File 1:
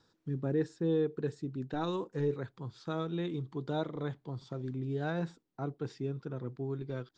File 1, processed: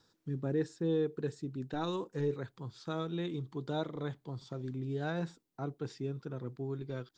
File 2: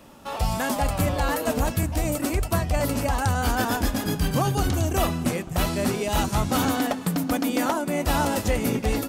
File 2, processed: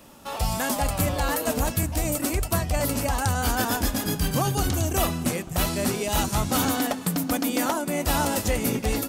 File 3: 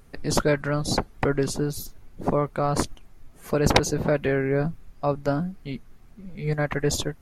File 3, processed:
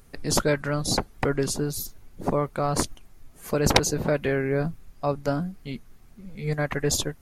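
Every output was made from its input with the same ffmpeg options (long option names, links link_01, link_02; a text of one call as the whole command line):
ffmpeg -i in.wav -af "highshelf=frequency=4500:gain=7,volume=-1.5dB" out.wav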